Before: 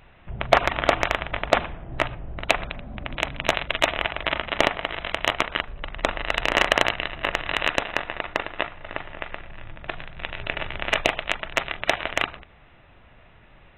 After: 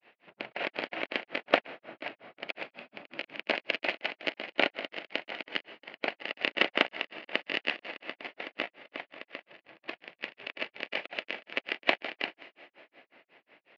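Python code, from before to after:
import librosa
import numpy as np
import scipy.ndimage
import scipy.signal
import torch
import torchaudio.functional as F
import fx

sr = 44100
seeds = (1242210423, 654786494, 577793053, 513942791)

y = fx.lower_of_two(x, sr, delay_ms=0.41)
y = scipy.signal.sosfilt(scipy.signal.bessel(4, 390.0, 'highpass', norm='mag', fs=sr, output='sos'), y)
y = fx.rev_plate(y, sr, seeds[0], rt60_s=4.8, hf_ratio=0.65, predelay_ms=0, drr_db=16.5)
y = fx.granulator(y, sr, seeds[1], grain_ms=163.0, per_s=5.5, spray_ms=11.0, spread_st=0)
y = scipy.signal.sosfilt(scipy.signal.butter(4, 3800.0, 'lowpass', fs=sr, output='sos'), y)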